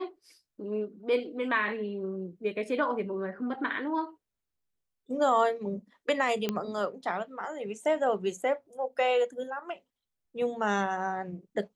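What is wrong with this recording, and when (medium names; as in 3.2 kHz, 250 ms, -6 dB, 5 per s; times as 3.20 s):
6.49 s: pop -15 dBFS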